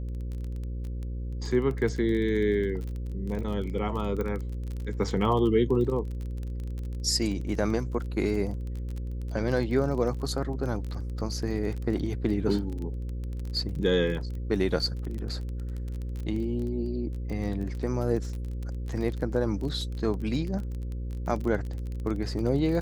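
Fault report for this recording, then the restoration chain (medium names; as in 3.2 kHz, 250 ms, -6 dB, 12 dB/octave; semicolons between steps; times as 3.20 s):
buzz 60 Hz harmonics 9 -33 dBFS
crackle 25 per s -33 dBFS
4.21 s: pop -20 dBFS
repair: de-click; de-hum 60 Hz, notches 9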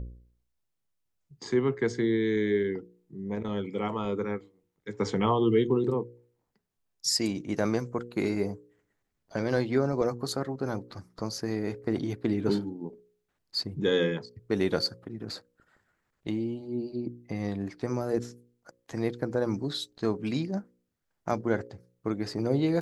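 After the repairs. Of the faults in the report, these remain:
nothing left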